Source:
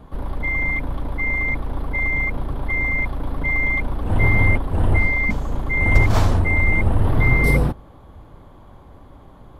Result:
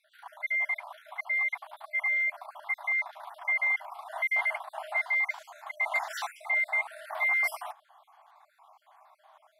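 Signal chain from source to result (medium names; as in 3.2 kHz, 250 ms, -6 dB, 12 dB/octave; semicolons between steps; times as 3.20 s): random holes in the spectrogram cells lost 43%; brick-wall FIR high-pass 600 Hz; trim -4 dB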